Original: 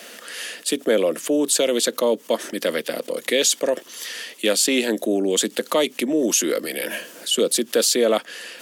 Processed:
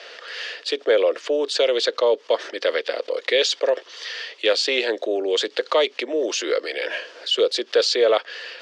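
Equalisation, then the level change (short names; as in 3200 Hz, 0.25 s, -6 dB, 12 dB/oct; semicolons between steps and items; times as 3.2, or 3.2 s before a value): elliptic band-pass 420–4800 Hz, stop band 60 dB; +2.0 dB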